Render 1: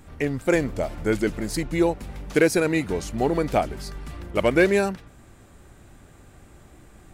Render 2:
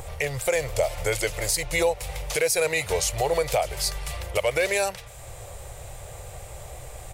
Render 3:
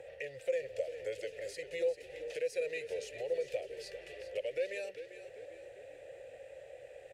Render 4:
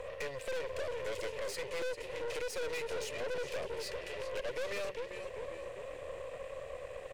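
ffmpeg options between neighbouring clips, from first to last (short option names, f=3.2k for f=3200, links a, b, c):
-filter_complex "[0:a]firequalizer=gain_entry='entry(130,0);entry(230,-27);entry(500,7);entry(1500,-1);entry(2100,8);entry(8900,14)':delay=0.05:min_phase=1,acrossover=split=1000[a][b];[a]acompressor=mode=upward:threshold=-33dB:ratio=2.5[c];[c][b]amix=inputs=2:normalize=0,alimiter=limit=-15.5dB:level=0:latency=1:release=190,volume=2.5dB"
-filter_complex "[0:a]acrossover=split=360|3000[a][b][c];[b]acompressor=threshold=-41dB:ratio=2.5[d];[a][d][c]amix=inputs=3:normalize=0,asplit=3[e][f][g];[e]bandpass=f=530:t=q:w=8,volume=0dB[h];[f]bandpass=f=1.84k:t=q:w=8,volume=-6dB[i];[g]bandpass=f=2.48k:t=q:w=8,volume=-9dB[j];[h][i][j]amix=inputs=3:normalize=0,asplit=2[k][l];[l]asplit=4[m][n][o][p];[m]adelay=395,afreqshift=-35,volume=-12dB[q];[n]adelay=790,afreqshift=-70,volume=-19.3dB[r];[o]adelay=1185,afreqshift=-105,volume=-26.7dB[s];[p]adelay=1580,afreqshift=-140,volume=-34dB[t];[q][r][s][t]amix=inputs=4:normalize=0[u];[k][u]amix=inputs=2:normalize=0,volume=1dB"
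-af "aeval=exprs='(tanh(200*val(0)+0.7)-tanh(0.7))/200':c=same,volume=10.5dB"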